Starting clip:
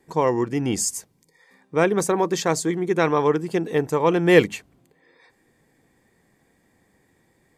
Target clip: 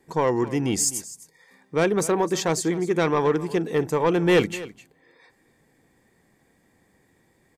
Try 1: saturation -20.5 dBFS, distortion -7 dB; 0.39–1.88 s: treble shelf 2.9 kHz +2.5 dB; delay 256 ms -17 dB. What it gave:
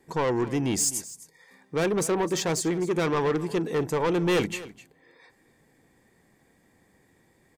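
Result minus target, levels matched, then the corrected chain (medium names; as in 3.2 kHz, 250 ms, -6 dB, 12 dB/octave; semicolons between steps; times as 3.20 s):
saturation: distortion +6 dB
saturation -12.5 dBFS, distortion -14 dB; 0.39–1.88 s: treble shelf 2.9 kHz +2.5 dB; delay 256 ms -17 dB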